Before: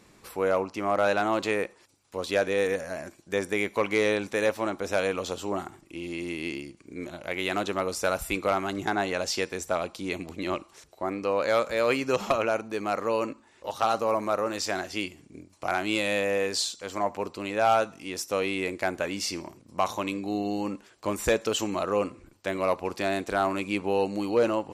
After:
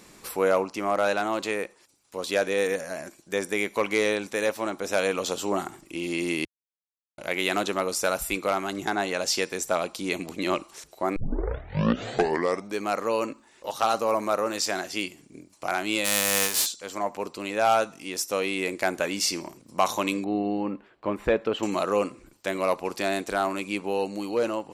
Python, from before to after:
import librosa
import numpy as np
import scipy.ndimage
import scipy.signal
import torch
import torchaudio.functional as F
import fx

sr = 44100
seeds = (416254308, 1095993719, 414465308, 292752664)

y = fx.envelope_flatten(x, sr, power=0.3, at=(16.04, 16.65), fade=0.02)
y = fx.air_absorb(y, sr, metres=490.0, at=(20.24, 21.63))
y = fx.edit(y, sr, fx.silence(start_s=6.45, length_s=0.73),
    fx.tape_start(start_s=11.16, length_s=1.64), tone=tone)
y = fx.peak_eq(y, sr, hz=85.0, db=-11.0, octaves=0.63)
y = fx.rider(y, sr, range_db=10, speed_s=2.0)
y = fx.high_shelf(y, sr, hz=5200.0, db=7.0)